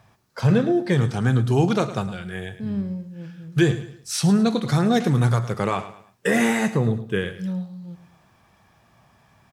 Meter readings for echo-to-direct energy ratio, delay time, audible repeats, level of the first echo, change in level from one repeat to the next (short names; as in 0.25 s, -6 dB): -13.5 dB, 0.108 s, 3, -14.0 dB, -9.0 dB